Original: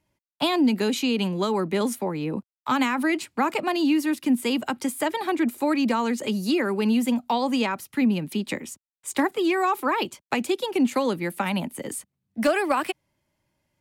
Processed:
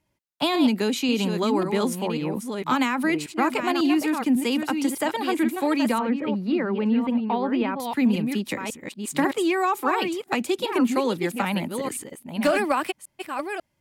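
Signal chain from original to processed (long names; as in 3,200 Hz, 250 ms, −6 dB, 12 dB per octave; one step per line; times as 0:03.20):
delay that plays each chunk backwards 544 ms, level −6.5 dB
0:05.99–0:07.80: high-frequency loss of the air 440 metres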